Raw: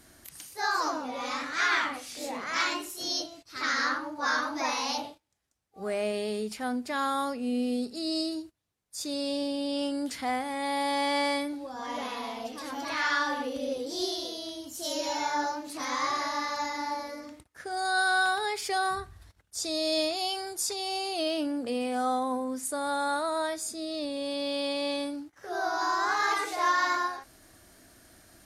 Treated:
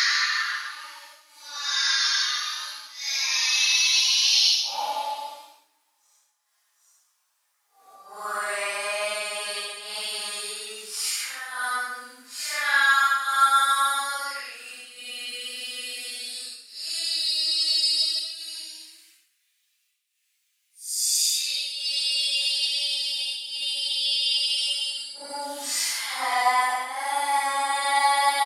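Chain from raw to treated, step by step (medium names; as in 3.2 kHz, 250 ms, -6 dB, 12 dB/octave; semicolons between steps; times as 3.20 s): treble shelf 3.5 kHz +10.5 dB; hum notches 60/120/180/240/300/360/420 Hz; in parallel at -1 dB: compression, threshold -35 dBFS, peak gain reduction 15 dB; on the sum: LFO high-pass saw up 0.2 Hz 860–3300 Hz; square tremolo 2.4 Hz, depth 65%, duty 85%; Paulstretch 4.1×, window 0.10 s, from 3.83 s; delay 137 ms -14 dB; on a send at -7.5 dB: reverberation RT60 0.10 s, pre-delay 3 ms; on the sum: trim +1.5 dB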